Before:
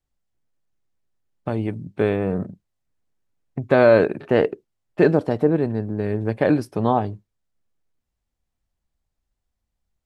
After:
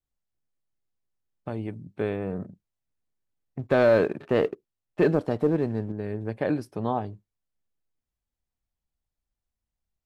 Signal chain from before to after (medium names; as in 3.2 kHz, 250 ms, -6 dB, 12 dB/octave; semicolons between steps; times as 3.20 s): 3.59–5.92 s: waveshaping leveller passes 1; trim -8 dB